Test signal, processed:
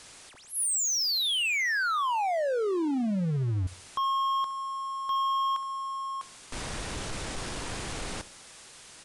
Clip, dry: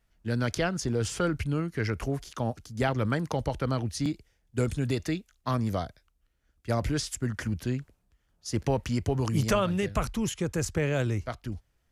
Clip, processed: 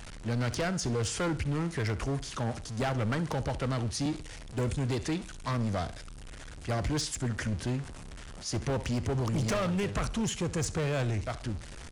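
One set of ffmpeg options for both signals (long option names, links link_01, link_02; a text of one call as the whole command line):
ffmpeg -i in.wav -filter_complex "[0:a]aeval=exprs='val(0)+0.5*0.015*sgn(val(0))':channel_layout=same,asplit=2[link_01][link_02];[link_02]aecho=0:1:66|132|198:0.126|0.0415|0.0137[link_03];[link_01][link_03]amix=inputs=2:normalize=0,aresample=22050,aresample=44100,volume=24.5dB,asoftclip=hard,volume=-24.5dB,volume=-1.5dB" out.wav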